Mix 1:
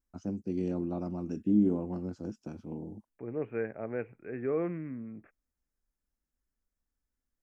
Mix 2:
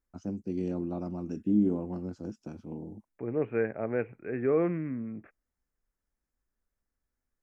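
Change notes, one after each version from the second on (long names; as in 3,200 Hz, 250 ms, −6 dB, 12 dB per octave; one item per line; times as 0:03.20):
second voice +5.0 dB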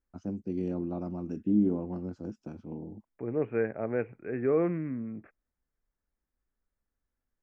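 master: add high-shelf EQ 5,100 Hz −11.5 dB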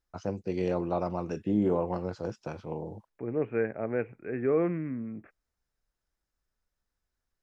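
first voice: add octave-band graphic EQ 125/250/500/1,000/2,000/4,000 Hz +9/−10/+11/+10/+10/+11 dB
master: add high-shelf EQ 5,100 Hz +11.5 dB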